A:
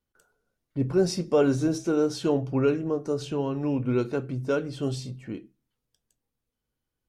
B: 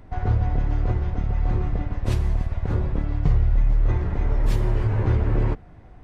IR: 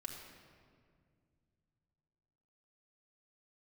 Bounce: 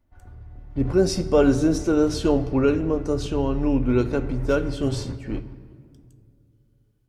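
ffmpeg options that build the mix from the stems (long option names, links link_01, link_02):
-filter_complex "[0:a]dynaudnorm=framelen=470:gausssize=3:maxgain=5.5dB,volume=-3.5dB,asplit=3[link_01][link_02][link_03];[link_02]volume=-6dB[link_04];[1:a]alimiter=limit=-13.5dB:level=0:latency=1:release=186,volume=-10.5dB,asplit=2[link_05][link_06];[link_06]volume=-10dB[link_07];[link_03]apad=whole_len=266155[link_08];[link_05][link_08]sidechaingate=range=-33dB:threshold=-33dB:ratio=16:detection=peak[link_09];[2:a]atrim=start_sample=2205[link_10];[link_04][link_07]amix=inputs=2:normalize=0[link_11];[link_11][link_10]afir=irnorm=-1:irlink=0[link_12];[link_01][link_09][link_12]amix=inputs=3:normalize=0"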